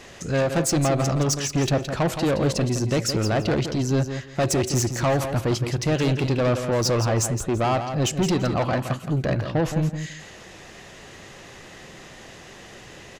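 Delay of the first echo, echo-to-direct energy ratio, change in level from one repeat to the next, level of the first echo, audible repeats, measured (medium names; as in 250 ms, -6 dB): 168 ms, -8.5 dB, -13.5 dB, -8.5 dB, 2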